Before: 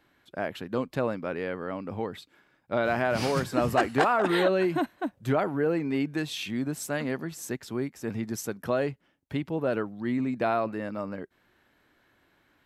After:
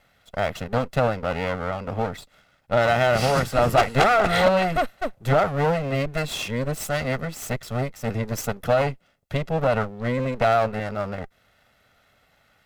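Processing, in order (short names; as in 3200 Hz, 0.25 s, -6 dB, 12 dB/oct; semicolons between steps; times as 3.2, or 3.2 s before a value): minimum comb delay 1.5 ms; gain +6.5 dB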